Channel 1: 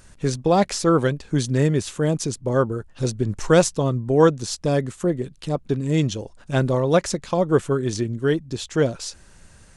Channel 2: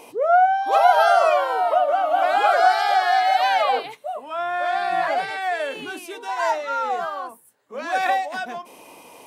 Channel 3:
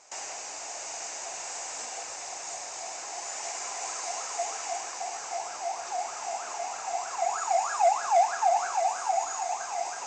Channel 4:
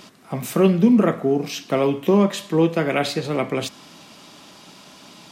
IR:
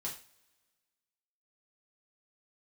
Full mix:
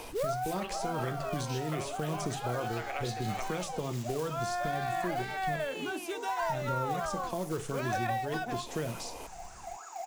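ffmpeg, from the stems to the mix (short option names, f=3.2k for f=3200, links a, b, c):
-filter_complex "[0:a]alimiter=limit=-15.5dB:level=0:latency=1,aphaser=in_gain=1:out_gain=1:delay=3.2:decay=0.32:speed=0.88:type=triangular,volume=-7.5dB,asplit=3[a][b][c];[a]atrim=end=5.67,asetpts=PTS-STARTPTS,afade=t=out:st=5.666:d=0.004:c=hsin[d];[b]atrim=start=5.67:end=6.42,asetpts=PTS-STARTPTS,volume=0[e];[c]atrim=start=6.42,asetpts=PTS-STARTPTS,afade=t=in:d=0.004:c=hsin[f];[d][e][f]concat=n=3:v=0:a=1,asplit=2[g][h];[h]volume=-4.5dB[i];[1:a]volume=1dB[j];[2:a]equalizer=f=320:t=o:w=0.77:g=7,adelay=2450,volume=-15.5dB[k];[3:a]highpass=980,volume=-7dB,asplit=2[l][m];[m]apad=whole_len=408689[n];[j][n]sidechaincompress=threshold=-53dB:ratio=5:attack=16:release=722[o];[4:a]atrim=start_sample=2205[p];[i][p]afir=irnorm=-1:irlink=0[q];[g][o][k][l][q]amix=inputs=5:normalize=0,acrusher=bits=5:mode=log:mix=0:aa=0.000001,acrossover=split=160|1100[r][s][t];[r]acompressor=threshold=-40dB:ratio=4[u];[s]acompressor=threshold=-34dB:ratio=4[v];[t]acompressor=threshold=-41dB:ratio=4[w];[u][v][w]amix=inputs=3:normalize=0"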